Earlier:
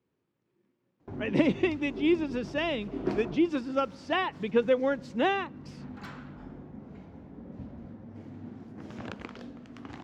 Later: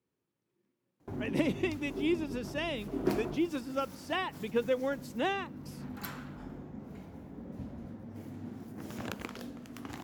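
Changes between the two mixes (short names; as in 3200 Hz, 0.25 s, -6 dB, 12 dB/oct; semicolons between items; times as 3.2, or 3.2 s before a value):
speech -6.0 dB; master: remove air absorption 130 m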